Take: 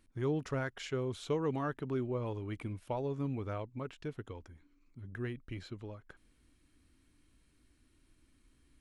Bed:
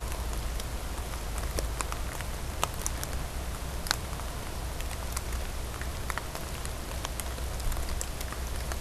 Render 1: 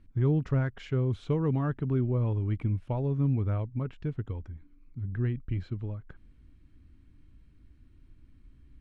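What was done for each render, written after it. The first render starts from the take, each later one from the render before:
low-pass filter 8,500 Hz
bass and treble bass +14 dB, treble −11 dB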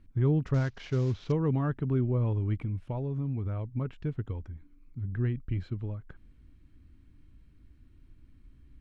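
0:00.54–0:01.32: variable-slope delta modulation 32 kbit/s
0:02.58–0:03.75: downward compressor 5 to 1, threshold −28 dBFS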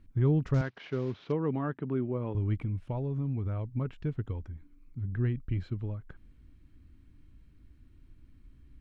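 0:00.61–0:02.35: band-pass filter 200–3,300 Hz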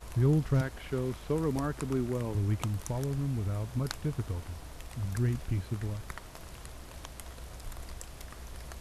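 mix in bed −10.5 dB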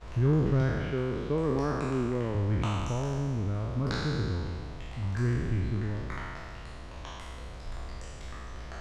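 peak hold with a decay on every bin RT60 2.09 s
high-frequency loss of the air 140 metres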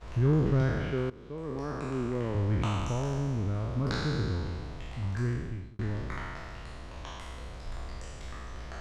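0:01.10–0:02.39: fade in, from −18.5 dB
0:04.83–0:05.79: fade out equal-power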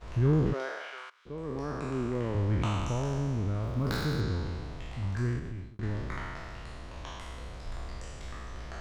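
0:00.52–0:01.25: high-pass filter 350 Hz → 1,300 Hz 24 dB per octave
0:03.63–0:04.21: gap after every zero crossing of 0.053 ms
0:05.39–0:05.83: downward compressor, threshold −33 dBFS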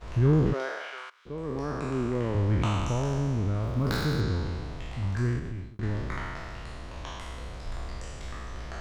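level +3 dB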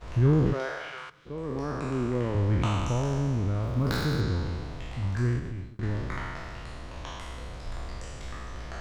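coupled-rooms reverb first 0.24 s, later 2.8 s, from −19 dB, DRR 17.5 dB

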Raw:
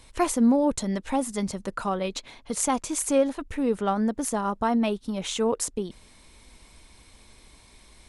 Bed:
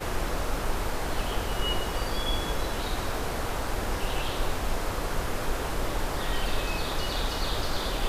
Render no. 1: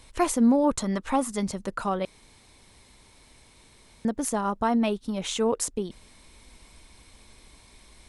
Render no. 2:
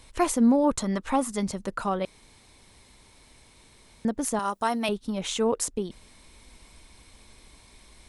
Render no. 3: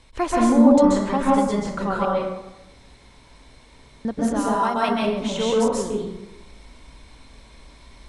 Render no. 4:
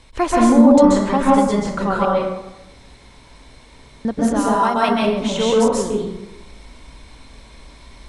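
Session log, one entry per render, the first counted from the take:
0:00.64–0:01.32: parametric band 1,200 Hz +9.5 dB 0.58 octaves; 0:02.05–0:04.05: fill with room tone
0:04.39–0:04.89: RIAA equalisation recording
high-frequency loss of the air 66 metres; dense smooth reverb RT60 0.94 s, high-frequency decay 0.55×, pre-delay 120 ms, DRR −5 dB
level +4.5 dB; brickwall limiter −2 dBFS, peak gain reduction 3 dB

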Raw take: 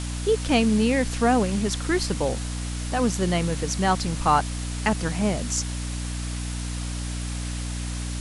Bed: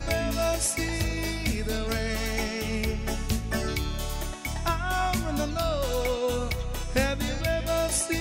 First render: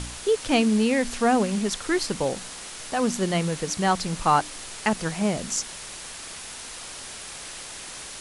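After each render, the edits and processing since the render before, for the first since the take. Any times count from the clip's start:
hum removal 60 Hz, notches 5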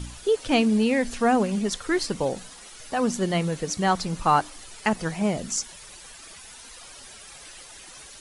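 broadband denoise 11 dB, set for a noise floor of −39 dBFS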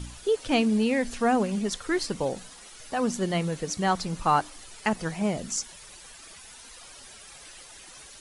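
level −2.5 dB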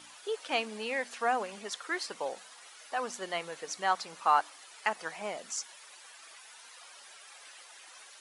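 high-pass filter 770 Hz 12 dB per octave
high-shelf EQ 3,500 Hz −8 dB

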